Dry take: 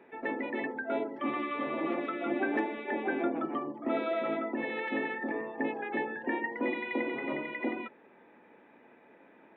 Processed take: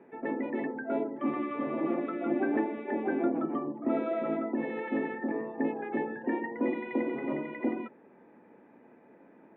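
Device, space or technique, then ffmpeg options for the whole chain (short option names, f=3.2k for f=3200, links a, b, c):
phone in a pocket: -af "lowpass=3.1k,equalizer=f=170:t=o:w=2.3:g=5.5,highshelf=f=2k:g=-10.5"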